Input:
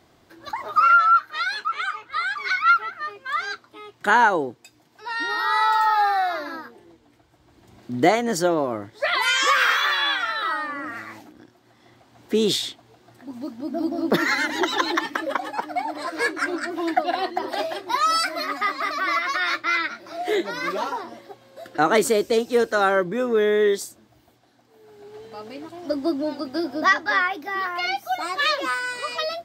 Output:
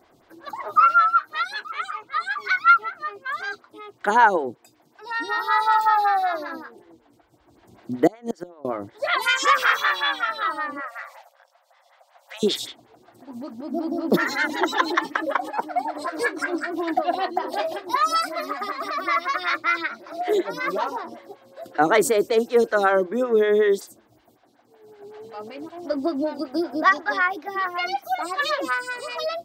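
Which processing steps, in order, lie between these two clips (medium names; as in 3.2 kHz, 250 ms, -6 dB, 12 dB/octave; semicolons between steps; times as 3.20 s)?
8.07–8.65 s: inverted gate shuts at -13 dBFS, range -26 dB; 10.80–12.43 s: brick-wall FIR high-pass 510 Hz; lamp-driven phase shifter 5.3 Hz; trim +2.5 dB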